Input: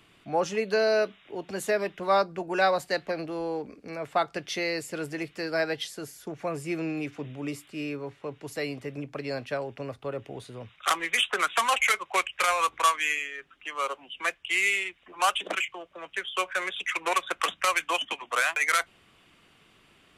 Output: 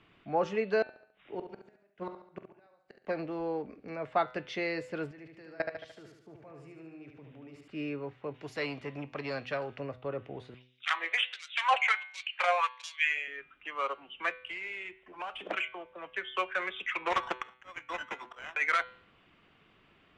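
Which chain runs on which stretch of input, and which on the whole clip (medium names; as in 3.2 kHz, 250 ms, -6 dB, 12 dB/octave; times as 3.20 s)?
0.82–3.07 s: inverted gate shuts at -25 dBFS, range -39 dB + doubling 45 ms -14 dB + feedback delay 70 ms, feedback 45%, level -9 dB
5.11–7.68 s: high-pass 57 Hz + level held to a coarse grid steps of 24 dB + feedback delay 74 ms, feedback 52%, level -5 dB
8.34–9.80 s: treble shelf 2.4 kHz +10.5 dB + band-stop 7.9 kHz + transformer saturation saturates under 1.1 kHz
10.54–13.28 s: peaking EQ 1.2 kHz -8 dB 0.47 oct + LFO high-pass sine 1.4 Hz 610–5200 Hz
14.46–15.51 s: median filter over 9 samples + band-stop 1.2 kHz, Q 8.7 + compression 10:1, threshold -31 dBFS
17.10–18.55 s: slow attack 619 ms + sample-rate reducer 4.5 kHz + loudspeaker Doppler distortion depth 0.18 ms
whole clip: low-pass 2.8 kHz 12 dB/octave; de-hum 126.2 Hz, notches 35; trim -2.5 dB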